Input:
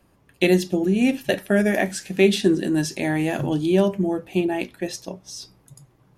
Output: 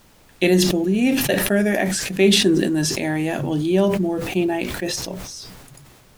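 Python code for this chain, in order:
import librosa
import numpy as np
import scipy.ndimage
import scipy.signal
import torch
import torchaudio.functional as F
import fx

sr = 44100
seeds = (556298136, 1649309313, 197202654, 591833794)

y = fx.dmg_noise_colour(x, sr, seeds[0], colour='pink', level_db=-53.0)
y = fx.sustainer(y, sr, db_per_s=32.0)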